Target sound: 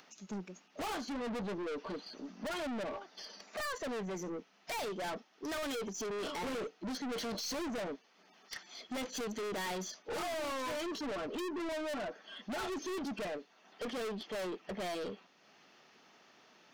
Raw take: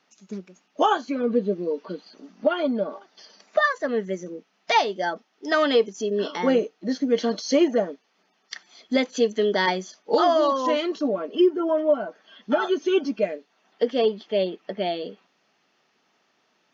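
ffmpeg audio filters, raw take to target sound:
-af "aeval=exprs='(tanh(79.4*val(0)+0.1)-tanh(0.1))/79.4':c=same,acompressor=mode=upward:threshold=0.00141:ratio=2.5,volume=1.12"

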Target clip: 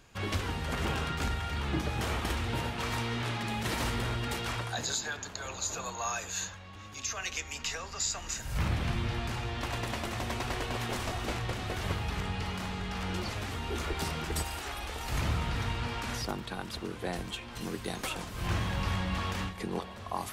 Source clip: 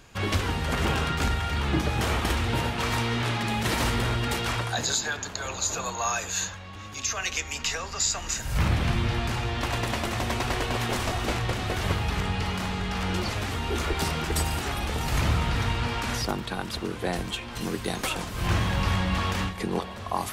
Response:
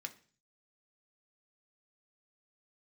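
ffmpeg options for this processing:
-filter_complex "[0:a]asettb=1/sr,asplit=3[s0][s1][s2];[s0]atrim=end=14.424[s3];[s1]atrim=start=14.42:end=15.09,asetpts=PTS-STARTPTS,afade=t=in:d=0.004:c=qsin,afade=t=out:st=0.666:d=0.004:c=qsin,equalizer=f=150:t=o:w=1.7:g=-12.5[s4];[s2]atrim=start=15.086[s5];[s3][s4]acrossfade=d=0.004:c1=hsin:c2=qsin[s6];[s6][s5]acrossfade=d=0.004:c1=qsin:c2=hsin,volume=0.473"

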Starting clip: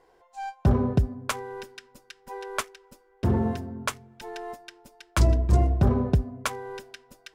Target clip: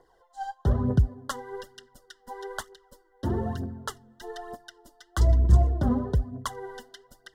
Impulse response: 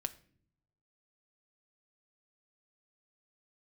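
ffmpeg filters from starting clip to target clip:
-filter_complex "[0:a]acrossover=split=310[s0][s1];[s1]acompressor=threshold=0.0316:ratio=2[s2];[s0][s2]amix=inputs=2:normalize=0,aphaser=in_gain=1:out_gain=1:delay=4.2:decay=0.6:speed=1.1:type=triangular,asuperstop=centerf=2400:order=20:qfactor=3,volume=0.668"

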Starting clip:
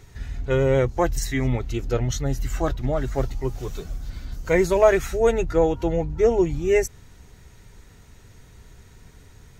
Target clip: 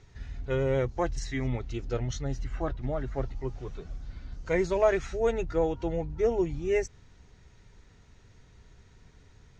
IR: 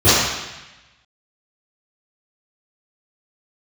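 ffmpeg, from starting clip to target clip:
-filter_complex "[0:a]lowpass=f=6400:w=0.5412,lowpass=f=6400:w=1.3066,asettb=1/sr,asplit=3[s0][s1][s2];[s0]atrim=end=2.444[s3];[s1]atrim=start=2.44:end=4.46,asetpts=PTS-STARTPTS,afade=t=in:d=0.004:c=qsin,afade=t=out:st=2.016:d=0.004:c=qsin,acrossover=split=2900[s4][s5];[s5]acompressor=threshold=0.00126:ratio=4:attack=1:release=60[s6];[s4][s6]amix=inputs=2:normalize=0[s7];[s2]atrim=start=4.456[s8];[s3][s7]acrossfade=d=0.004:c1=hsin:c2=qsin[s9];[s9][s8]acrossfade=d=0.004:c1=qsin:c2=hsin,volume=0.422"

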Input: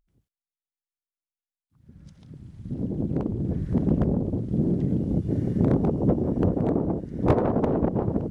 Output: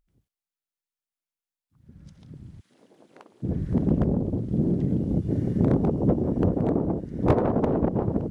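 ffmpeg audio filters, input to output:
-filter_complex "[0:a]asplit=3[s0][s1][s2];[s0]afade=t=out:st=2.59:d=0.02[s3];[s1]highpass=1400,afade=t=in:st=2.59:d=0.02,afade=t=out:st=3.42:d=0.02[s4];[s2]afade=t=in:st=3.42:d=0.02[s5];[s3][s4][s5]amix=inputs=3:normalize=0"

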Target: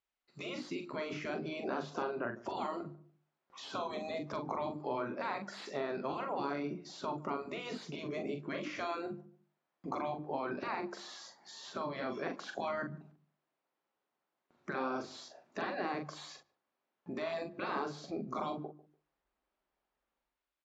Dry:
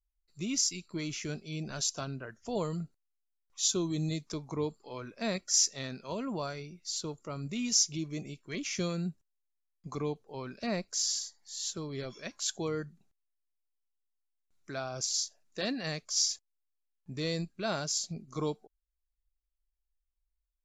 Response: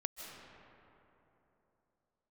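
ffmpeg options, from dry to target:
-filter_complex "[0:a]bandreject=f=50:t=h:w=6,bandreject=f=100:t=h:w=6,bandreject=f=150:t=h:w=6,bandreject=f=200:t=h:w=6,bandreject=f=250:t=h:w=6,bandreject=f=300:t=h:w=6,bandreject=f=350:t=h:w=6,afftfilt=real='re*lt(hypot(re,im),0.0447)':imag='im*lt(hypot(re,im),0.0447)':win_size=1024:overlap=0.75,bandreject=f=470:w=12,acrossover=split=1300[s0][s1];[s0]dynaudnorm=f=110:g=9:m=3.76[s2];[s1]alimiter=level_in=5.31:limit=0.0631:level=0:latency=1:release=35,volume=0.188[s3];[s2][s3]amix=inputs=2:normalize=0,acompressor=threshold=0.00316:ratio=2,highpass=230,lowpass=3000,asplit=2[s4][s5];[s5]adelay=42,volume=0.447[s6];[s4][s6]amix=inputs=2:normalize=0,asplit=2[s7][s8];[s8]adelay=146,lowpass=f=810:p=1,volume=0.126,asplit=2[s9][s10];[s10]adelay=146,lowpass=f=810:p=1,volume=0.27[s11];[s7][s9][s11]amix=inputs=3:normalize=0,volume=2.99"

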